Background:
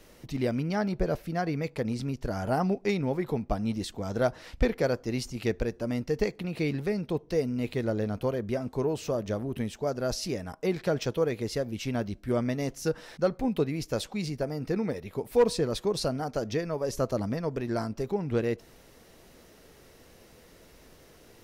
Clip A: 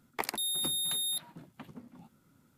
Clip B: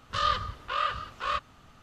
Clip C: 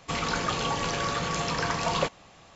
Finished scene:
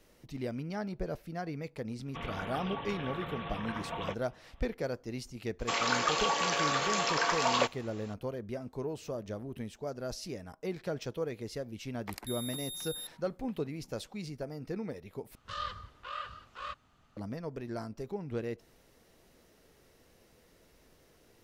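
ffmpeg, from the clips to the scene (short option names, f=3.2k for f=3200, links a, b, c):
-filter_complex "[3:a]asplit=2[a][b];[0:a]volume=-8.5dB[c];[a]aresample=8000,aresample=44100[d];[b]highpass=460[e];[c]asplit=2[f][g];[f]atrim=end=15.354[h];[2:a]atrim=end=1.82,asetpts=PTS-STARTPTS,volume=-11.5dB[i];[g]atrim=start=17.166[j];[d]atrim=end=2.55,asetpts=PTS-STARTPTS,volume=-11dB,afade=t=in:d=0.004:c=hsin,afade=t=out:st=2.546:d=0.004:c=hsin,adelay=2060[k];[e]atrim=end=2.55,asetpts=PTS-STARTPTS,afade=t=in:d=0.004:c=hsin,afade=t=out:st=2.546:d=0.004:c=hsin,adelay=5590[l];[1:a]atrim=end=2.57,asetpts=PTS-STARTPTS,volume=-9.5dB,afade=t=in:d=0.004:c=hsin,afade=t=out:st=2.566:d=0.004:c=hsin,adelay=11890[m];[h][i]acrossfade=d=0.004:c1=hsin:c2=hsin[n];[n][j]acrossfade=d=0.004:c1=hsin:c2=hsin[o];[o][k][l][m]amix=inputs=4:normalize=0"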